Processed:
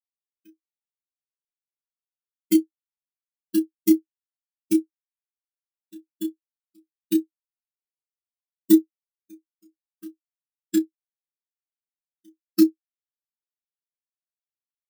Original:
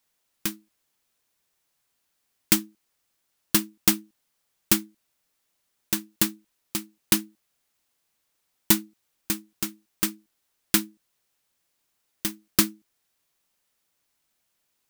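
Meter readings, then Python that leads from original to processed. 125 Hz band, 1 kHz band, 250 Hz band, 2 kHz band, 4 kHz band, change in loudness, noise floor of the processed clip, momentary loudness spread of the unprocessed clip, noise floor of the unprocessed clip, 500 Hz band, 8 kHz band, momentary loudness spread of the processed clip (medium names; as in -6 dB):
no reading, under -20 dB, +8.0 dB, under -15 dB, -13.5 dB, +2.0 dB, under -85 dBFS, 11 LU, -76 dBFS, +8.5 dB, -13.0 dB, 14 LU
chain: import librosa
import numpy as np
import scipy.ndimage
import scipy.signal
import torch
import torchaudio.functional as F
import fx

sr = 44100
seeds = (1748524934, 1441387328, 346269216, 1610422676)

y = fx.low_shelf(x, sr, hz=480.0, db=-10.0)
y = fx.room_flutter(y, sr, wall_m=5.4, rt60_s=0.29)
y = fx.spectral_expand(y, sr, expansion=4.0)
y = F.gain(torch.from_numpy(y), -1.0).numpy()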